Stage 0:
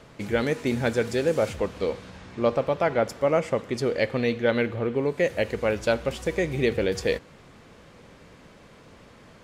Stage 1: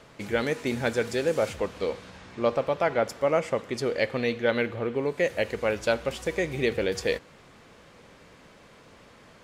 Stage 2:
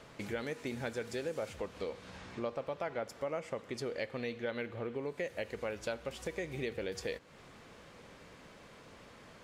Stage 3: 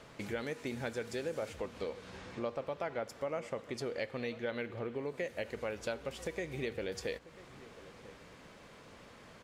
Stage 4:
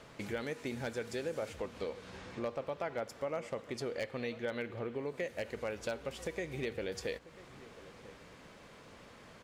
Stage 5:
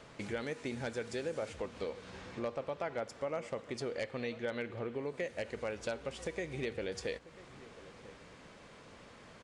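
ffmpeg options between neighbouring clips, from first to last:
-af "lowshelf=f=360:g=-5.5"
-af "acompressor=threshold=-37dB:ratio=2.5,volume=-2.5dB"
-filter_complex "[0:a]asplit=2[a][b];[b]adelay=991.3,volume=-17dB,highshelf=f=4k:g=-22.3[c];[a][c]amix=inputs=2:normalize=0"
-af "aeval=exprs='0.0447*(abs(mod(val(0)/0.0447+3,4)-2)-1)':c=same"
-af "aresample=22050,aresample=44100"

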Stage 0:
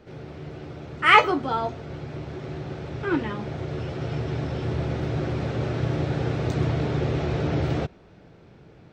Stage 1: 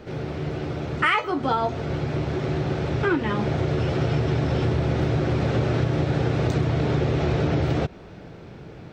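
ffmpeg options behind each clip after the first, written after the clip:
-af "acompressor=threshold=-27dB:ratio=20,volume=9dB"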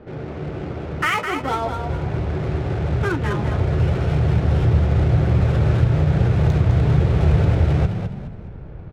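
-filter_complex "[0:a]asubboost=boost=9:cutoff=75,adynamicsmooth=sensitivity=7:basefreq=1.3k,asplit=5[a][b][c][d][e];[b]adelay=208,afreqshift=32,volume=-7dB[f];[c]adelay=416,afreqshift=64,volume=-16.6dB[g];[d]adelay=624,afreqshift=96,volume=-26.3dB[h];[e]adelay=832,afreqshift=128,volume=-35.9dB[i];[a][f][g][h][i]amix=inputs=5:normalize=0"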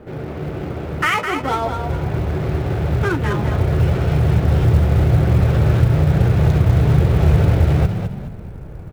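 -af "acrusher=bits=9:mode=log:mix=0:aa=0.000001,volume=2.5dB"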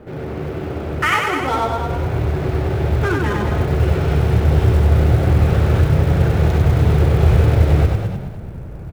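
-af "aecho=1:1:96:0.668"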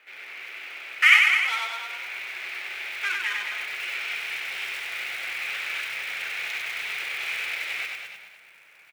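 -af "highpass=f=2.3k:t=q:w=3.9,volume=-2.5dB"

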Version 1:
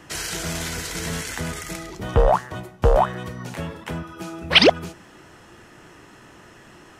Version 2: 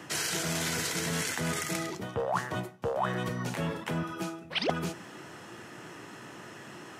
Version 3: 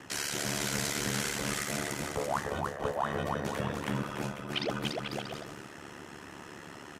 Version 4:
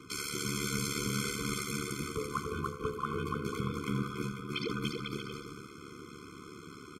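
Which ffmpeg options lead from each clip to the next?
-af "highpass=f=110:w=0.5412,highpass=f=110:w=1.3066,areverse,acompressor=threshold=-29dB:ratio=12,areverse,volume=1.5dB"
-af "aecho=1:1:290|493|635.1|734.6|804.2:0.631|0.398|0.251|0.158|0.1,aeval=exprs='val(0)*sin(2*PI*36*n/s)':c=same"
-af "aecho=1:1:84:0.237,afftfilt=real='re*eq(mod(floor(b*sr/1024/510),2),0)':imag='im*eq(mod(floor(b*sr/1024/510),2),0)':win_size=1024:overlap=0.75"

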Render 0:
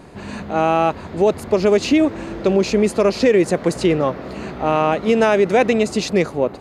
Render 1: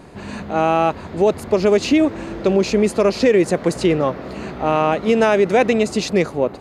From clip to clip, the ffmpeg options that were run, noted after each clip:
-af anull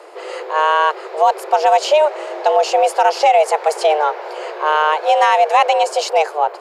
-af "afreqshift=300,volume=2dB"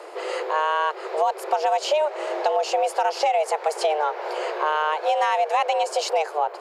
-af "acompressor=threshold=-21dB:ratio=3"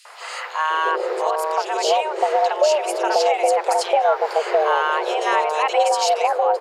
-filter_complex "[0:a]acrossover=split=890|2900[a][b][c];[b]adelay=50[d];[a]adelay=700[e];[e][d][c]amix=inputs=3:normalize=0,volume=6dB"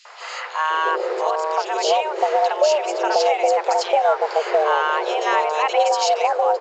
-ar 16000 -c:a pcm_mulaw

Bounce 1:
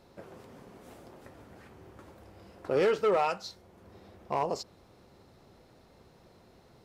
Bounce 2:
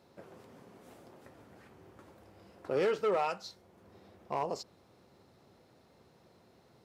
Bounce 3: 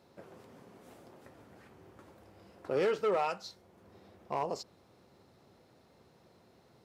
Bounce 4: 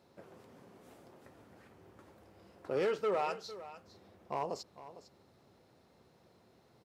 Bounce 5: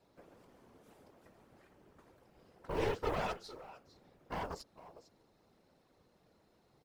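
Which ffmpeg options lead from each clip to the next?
-af "highpass=89,volume=-4dB"
-af anull
-af "aecho=1:1:454:0.178,volume=-2.5dB"
-af "aeval=exprs='0.0631*(cos(1*acos(clip(val(0)/0.0631,-1,1)))-cos(1*PI/2))+0.02*(cos(4*acos(clip(val(0)/0.0631,-1,1)))-cos(4*PI/2))':c=same,acrusher=bits=8:mode=log:mix=0:aa=0.000001,afftfilt=real='hypot(re,im)*cos(2*PI*random(0))':imag='hypot(re,im)*sin(2*PI*random(1))':win_size=512:overlap=0.75,volume=1.5dB"

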